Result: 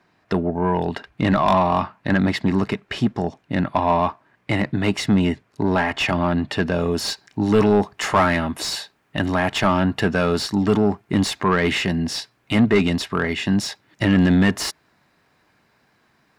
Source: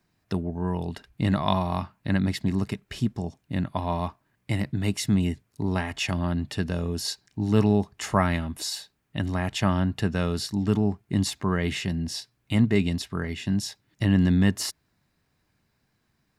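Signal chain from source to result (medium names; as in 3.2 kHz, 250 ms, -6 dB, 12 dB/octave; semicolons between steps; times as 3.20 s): treble shelf 8 kHz -7.5 dB, from 6.80 s +4 dB; overdrive pedal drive 23 dB, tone 1.4 kHz, clips at -5.5 dBFS; trim +1 dB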